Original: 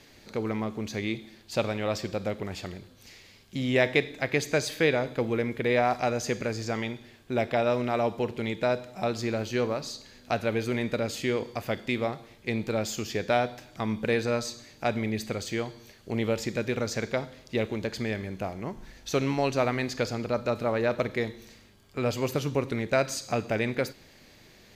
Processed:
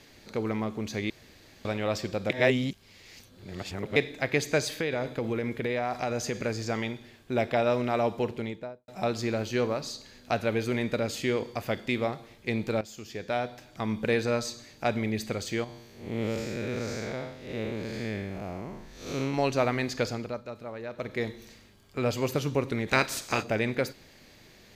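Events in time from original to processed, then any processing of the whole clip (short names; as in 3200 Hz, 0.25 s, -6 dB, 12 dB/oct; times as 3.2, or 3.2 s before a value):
1.1–1.65 room tone
2.3–3.96 reverse
4.65–6.4 compressor, threshold -25 dBFS
8.23–8.88 studio fade out
12.81–14.01 fade in, from -14.5 dB
15.64–19.34 time blur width 0.194 s
20.07–21.29 dip -12 dB, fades 0.36 s
22.87–23.42 spectral limiter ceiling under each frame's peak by 18 dB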